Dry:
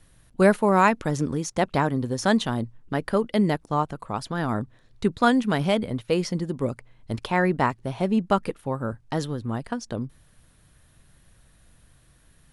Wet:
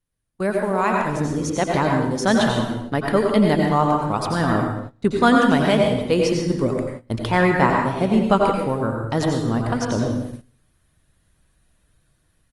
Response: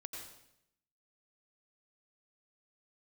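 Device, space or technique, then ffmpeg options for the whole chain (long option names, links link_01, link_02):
speakerphone in a meeting room: -filter_complex "[1:a]atrim=start_sample=2205[link_01];[0:a][link_01]afir=irnorm=-1:irlink=0,asplit=2[link_02][link_03];[link_03]adelay=160,highpass=300,lowpass=3400,asoftclip=type=hard:threshold=-17dB,volume=-27dB[link_04];[link_02][link_04]amix=inputs=2:normalize=0,dynaudnorm=framelen=690:gausssize=3:maxgain=16dB,agate=range=-18dB:threshold=-30dB:ratio=16:detection=peak,volume=-1dB" -ar 48000 -c:a libopus -b:a 32k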